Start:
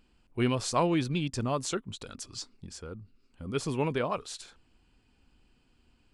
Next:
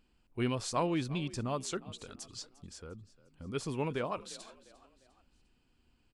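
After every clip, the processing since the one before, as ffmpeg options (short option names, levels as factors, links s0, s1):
-filter_complex "[0:a]asplit=4[s0][s1][s2][s3];[s1]adelay=351,afreqshift=44,volume=0.106[s4];[s2]adelay=702,afreqshift=88,volume=0.0468[s5];[s3]adelay=1053,afreqshift=132,volume=0.0204[s6];[s0][s4][s5][s6]amix=inputs=4:normalize=0,volume=0.562"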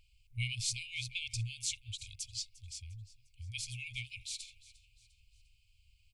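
-af "afftfilt=real='re*(1-between(b*sr/4096,120,2100))':imag='im*(1-between(b*sr/4096,120,2100))':win_size=4096:overlap=0.75,volume=1.78"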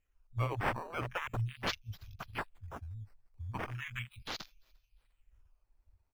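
-af "acrusher=samples=9:mix=1:aa=0.000001:lfo=1:lforange=9:lforate=0.38,afwtdn=0.00631,volume=1.41"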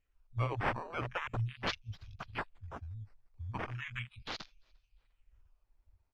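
-af "lowpass=5400"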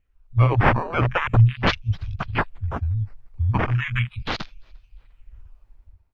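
-af "bass=f=250:g=6,treble=f=4000:g=-9,dynaudnorm=f=110:g=7:m=3.16,volume=1.78"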